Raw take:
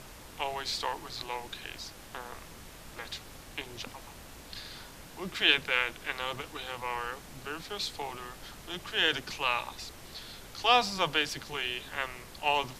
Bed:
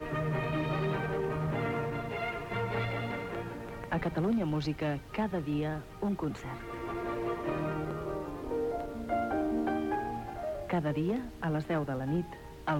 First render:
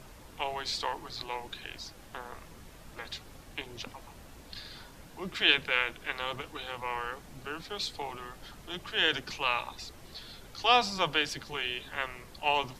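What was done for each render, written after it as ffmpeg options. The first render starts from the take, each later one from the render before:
-af "afftdn=nr=6:nf=-49"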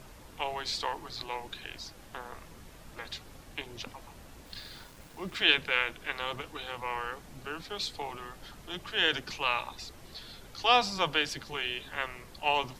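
-filter_complex "[0:a]asettb=1/sr,asplit=3[a][b][c];[a]atrim=end=4.464[d];[b]atrim=start=4.46:end=5.41,asetpts=PTS-STARTPTS,afade=t=in:d=0.004:c=qsin,afade=t=out:st=0.946:d=0.004:c=qsin,aeval=exprs='val(0)*gte(abs(val(0)),0.00282)':c=same[e];[c]atrim=start=5.406[f];[d][e]acrossfade=d=0.004:c1=hsin:c2=qsin[g];[g][f]acrossfade=d=0.004:c1=qsin:c2=hsin"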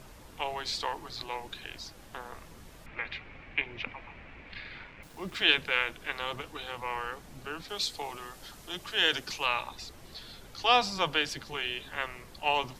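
-filter_complex "[0:a]asettb=1/sr,asplit=3[a][b][c];[a]atrim=end=2.864[d];[b]atrim=start=2.86:end=5.03,asetpts=PTS-STARTPTS,afade=t=in:d=0.004:c=qsin,afade=t=out:st=2.166:d=0.004:c=qsin,lowpass=f=2.3k:t=q:w=4.8[e];[c]atrim=start=5.026[f];[d][e]acrossfade=d=0.004:c1=hsin:c2=qsin[g];[g][f]acrossfade=d=0.004:c1=qsin:c2=hsin,asettb=1/sr,asplit=3[h][i][j];[h]atrim=end=7.684[k];[i]atrim=start=7.68:end=9.46,asetpts=PTS-STARTPTS,afade=t=in:d=0.004:c=qsin,afade=t=out:st=1.776:d=0.004:c=qsin,bass=f=250:g=-3,treble=f=4k:g=6[l];[j]atrim=start=9.456[m];[k][l]acrossfade=d=0.004:c1=hsin:c2=qsin[n];[n][m]acrossfade=d=0.004:c1=qsin:c2=hsin"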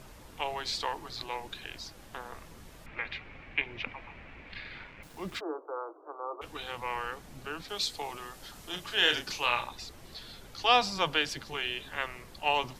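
-filter_complex "[0:a]asplit=3[a][b][c];[a]afade=t=out:st=5.39:d=0.02[d];[b]asuperpass=centerf=620:order=20:qfactor=0.63,afade=t=in:st=5.39:d=0.02,afade=t=out:st=6.41:d=0.02[e];[c]afade=t=in:st=6.41:d=0.02[f];[d][e][f]amix=inputs=3:normalize=0,asettb=1/sr,asplit=3[g][h][i];[g]atrim=end=8.524[j];[h]atrim=start=8.52:end=9.67,asetpts=PTS-STARTPTS,afade=t=in:d=0.004:c=qsin,afade=t=out:st=1.146:d=0.004:c=qsin,asplit=2[k][l];[l]adelay=33,volume=-7dB[m];[k][m]amix=inputs=2:normalize=0,atrim=end_sample=50715[n];[i]atrim=start=9.666[o];[j][n]acrossfade=d=0.004:c1=hsin:c2=qsin[p];[p][o]acrossfade=d=0.004:c1=qsin:c2=hsin"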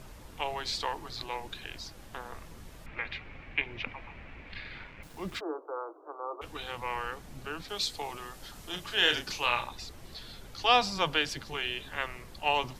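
-af "lowshelf=f=130:g=4.5"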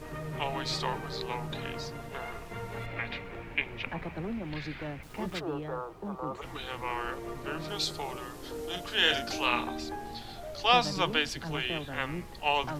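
-filter_complex "[1:a]volume=-6.5dB[a];[0:a][a]amix=inputs=2:normalize=0"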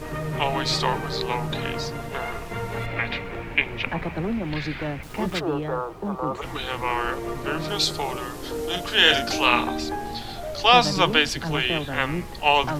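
-af "volume=9dB,alimiter=limit=-2dB:level=0:latency=1"

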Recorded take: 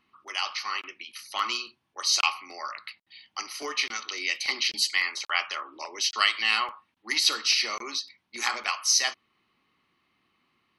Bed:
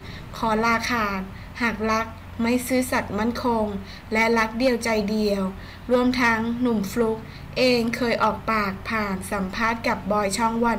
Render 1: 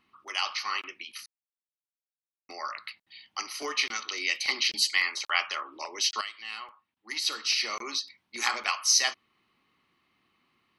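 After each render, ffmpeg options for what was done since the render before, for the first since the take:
-filter_complex "[0:a]asplit=4[a][b][c][d];[a]atrim=end=1.26,asetpts=PTS-STARTPTS,afade=t=out:st=1.256:d=0.004:c=hsin[e];[b]atrim=start=1.26:end=2.49,asetpts=PTS-STARTPTS,volume=0[f];[c]atrim=start=2.49:end=6.21,asetpts=PTS-STARTPTS,afade=t=in:d=0.004:c=hsin,afade=t=out:st=3.716:d=0.004:c=hsin:silence=0.158489[g];[d]atrim=start=6.21,asetpts=PTS-STARTPTS,afade=t=in:d=1.69:c=qua:silence=0.158489[h];[e][f][g][h]concat=n=4:v=0:a=1"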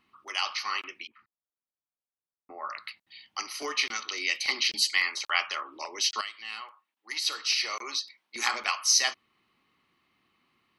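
-filter_complex "[0:a]asettb=1/sr,asplit=3[a][b][c];[a]atrim=end=1.074[d];[b]atrim=start=1.07:end=2.7,asetpts=PTS-STARTPTS,afade=t=in:d=0.004:c=qsin,afade=t=out:st=1.626:d=0.004:c=qsin,lowpass=f=1.4k:w=0.5412,lowpass=f=1.4k:w=1.3066[e];[c]atrim=start=2.696[f];[d][e]acrossfade=d=0.004:c1=hsin:c2=qsin[g];[g][f]acrossfade=d=0.004:c1=qsin:c2=hsin,asettb=1/sr,asplit=3[h][i][j];[h]atrim=end=6.614[k];[i]atrim=start=6.61:end=8.36,asetpts=PTS-STARTPTS,afade=t=in:d=0.004:c=qsin,afade=t=out:st=1.746:d=0.004:c=qsin,highpass=400[l];[j]atrim=start=8.356[m];[k][l]acrossfade=d=0.004:c1=hsin:c2=qsin[n];[n][m]acrossfade=d=0.004:c1=qsin:c2=hsin"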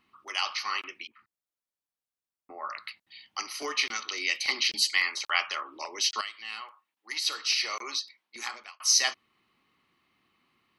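-filter_complex "[0:a]asplit=2[a][b];[a]atrim=end=8.8,asetpts=PTS-STARTPTS,afade=t=out:st=7.93:d=0.87[c];[b]atrim=start=8.8,asetpts=PTS-STARTPTS,afade=t=in:d=0.004:c=hsin[d];[c][d]concat=n=2:v=0:a=1"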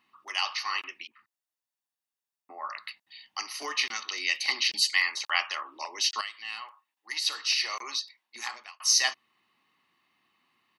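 -af "highpass=f=340:p=1,aecho=1:1:1.1:0.32"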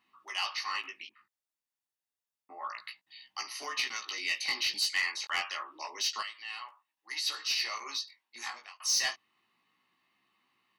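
-af "flanger=delay=15:depth=5.7:speed=0.29,asoftclip=type=tanh:threshold=-21.5dB"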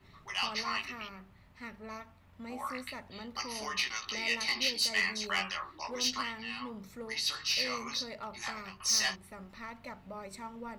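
-filter_complex "[1:a]volume=-22dB[a];[0:a][a]amix=inputs=2:normalize=0"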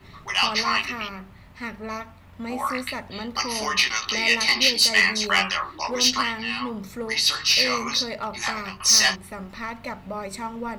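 -af "volume=12dB"

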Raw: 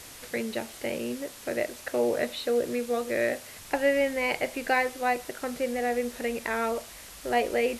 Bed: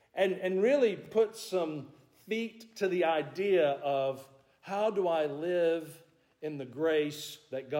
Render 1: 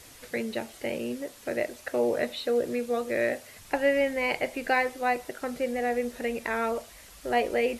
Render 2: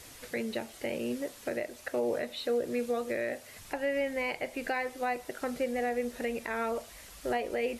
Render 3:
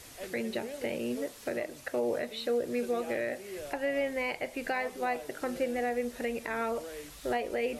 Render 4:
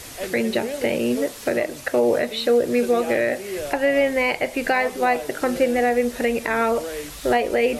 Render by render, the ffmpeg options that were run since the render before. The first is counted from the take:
-af "afftdn=nr=6:nf=-46"
-af "alimiter=limit=-22dB:level=0:latency=1:release=305"
-filter_complex "[1:a]volume=-15.5dB[a];[0:a][a]amix=inputs=2:normalize=0"
-af "volume=12dB"

